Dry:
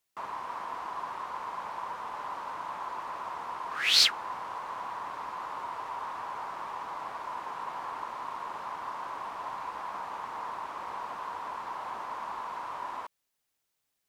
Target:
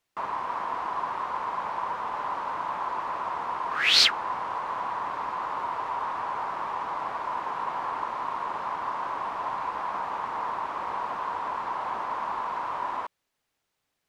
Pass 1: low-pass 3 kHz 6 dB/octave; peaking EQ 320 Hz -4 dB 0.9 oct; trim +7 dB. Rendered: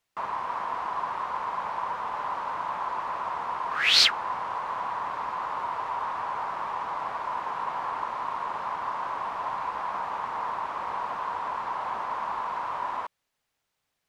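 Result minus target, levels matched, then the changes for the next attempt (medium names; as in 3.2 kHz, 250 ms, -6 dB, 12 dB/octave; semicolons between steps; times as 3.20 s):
250 Hz band -2.5 dB
remove: peaking EQ 320 Hz -4 dB 0.9 oct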